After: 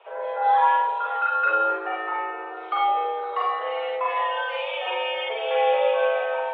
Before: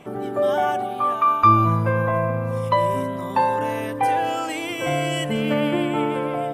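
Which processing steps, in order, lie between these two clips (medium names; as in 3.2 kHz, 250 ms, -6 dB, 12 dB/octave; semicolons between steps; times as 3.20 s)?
mistuned SSB +220 Hz 230–3200 Hz; Schroeder reverb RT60 0.39 s, combs from 33 ms, DRR -5 dB; trim -7 dB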